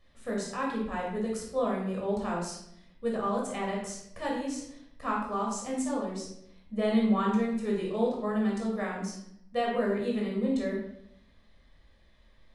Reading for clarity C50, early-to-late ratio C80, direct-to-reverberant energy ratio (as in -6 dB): 3.0 dB, 6.0 dB, -3.0 dB